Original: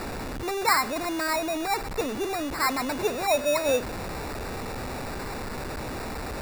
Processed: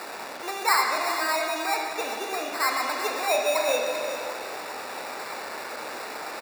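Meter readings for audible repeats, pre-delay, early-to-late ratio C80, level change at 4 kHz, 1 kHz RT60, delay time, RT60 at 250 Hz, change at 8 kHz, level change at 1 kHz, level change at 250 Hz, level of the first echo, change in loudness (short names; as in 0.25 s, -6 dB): 1, 25 ms, 2.5 dB, +2.5 dB, 1.9 s, 0.39 s, 2.3 s, +1.5 dB, +2.0 dB, -8.5 dB, -10.0 dB, +1.0 dB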